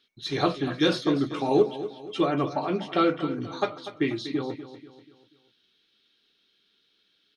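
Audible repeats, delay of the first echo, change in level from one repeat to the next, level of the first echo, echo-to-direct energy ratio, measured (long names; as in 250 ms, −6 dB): 4, 243 ms, −7.5 dB, −13.0 dB, −12.0 dB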